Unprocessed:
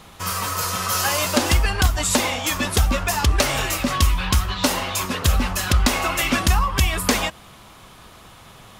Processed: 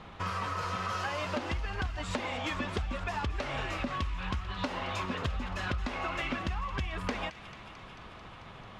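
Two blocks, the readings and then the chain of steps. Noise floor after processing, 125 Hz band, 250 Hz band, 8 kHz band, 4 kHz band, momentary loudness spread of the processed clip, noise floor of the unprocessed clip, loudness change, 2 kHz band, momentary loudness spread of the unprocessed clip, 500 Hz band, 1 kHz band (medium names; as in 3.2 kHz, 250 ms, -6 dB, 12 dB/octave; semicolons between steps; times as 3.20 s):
-49 dBFS, -14.0 dB, -12.5 dB, -27.5 dB, -16.5 dB, 14 LU, -46 dBFS, -14.0 dB, -12.0 dB, 4 LU, -11.5 dB, -11.0 dB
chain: low-pass 2.7 kHz 12 dB/octave; compression 10:1, threshold -28 dBFS, peak gain reduction 16 dB; feedback echo behind a high-pass 221 ms, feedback 78%, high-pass 1.9 kHz, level -13 dB; trim -2.5 dB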